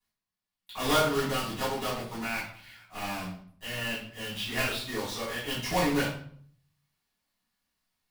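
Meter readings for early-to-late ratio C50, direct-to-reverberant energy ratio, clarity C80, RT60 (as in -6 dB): 3.5 dB, -11.0 dB, 8.0 dB, 0.55 s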